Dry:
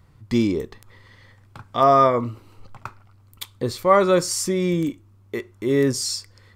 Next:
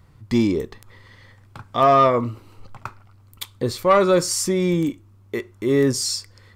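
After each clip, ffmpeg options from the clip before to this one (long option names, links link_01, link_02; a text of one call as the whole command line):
ffmpeg -i in.wav -af "acontrast=63,volume=-4.5dB" out.wav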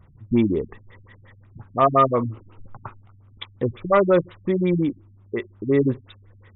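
ffmpeg -i in.wav -af "equalizer=frequency=4000:width_type=o:width=0.35:gain=2.5,afftfilt=real='re*lt(b*sr/1024,230*pow(3900/230,0.5+0.5*sin(2*PI*5.6*pts/sr)))':imag='im*lt(b*sr/1024,230*pow(3900/230,0.5+0.5*sin(2*PI*5.6*pts/sr)))':win_size=1024:overlap=0.75" out.wav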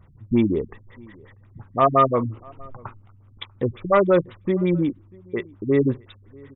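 ffmpeg -i in.wav -filter_complex "[0:a]asplit=2[link_01][link_02];[link_02]adelay=641.4,volume=-26dB,highshelf=frequency=4000:gain=-14.4[link_03];[link_01][link_03]amix=inputs=2:normalize=0" out.wav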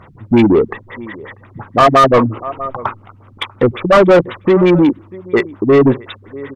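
ffmpeg -i in.wav -filter_complex "[0:a]asplit=2[link_01][link_02];[link_02]highpass=frequency=720:poles=1,volume=24dB,asoftclip=type=tanh:threshold=-6dB[link_03];[link_01][link_03]amix=inputs=2:normalize=0,lowpass=frequency=1700:poles=1,volume=-6dB,volume=5.5dB" out.wav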